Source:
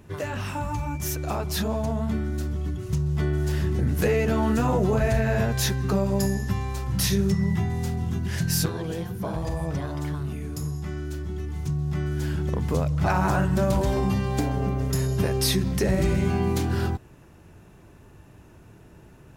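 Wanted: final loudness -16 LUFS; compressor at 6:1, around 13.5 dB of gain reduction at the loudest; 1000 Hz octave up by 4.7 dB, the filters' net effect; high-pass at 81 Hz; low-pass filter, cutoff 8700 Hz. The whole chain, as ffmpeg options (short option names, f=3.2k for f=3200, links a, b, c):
-af "highpass=81,lowpass=8.7k,equalizer=f=1k:t=o:g=6,acompressor=threshold=-32dB:ratio=6,volume=19.5dB"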